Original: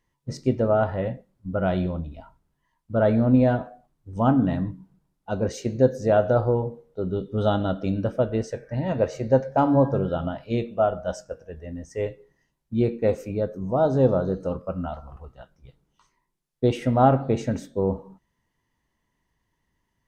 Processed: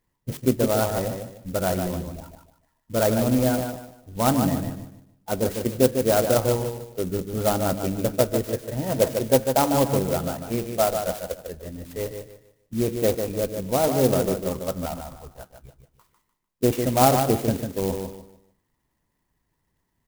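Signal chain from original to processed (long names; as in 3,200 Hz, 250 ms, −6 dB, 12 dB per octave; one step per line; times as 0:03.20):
harmonic and percussive parts rebalanced percussive +7 dB
repeating echo 149 ms, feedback 29%, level −6.5 dB
converter with an unsteady clock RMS 0.079 ms
level −4 dB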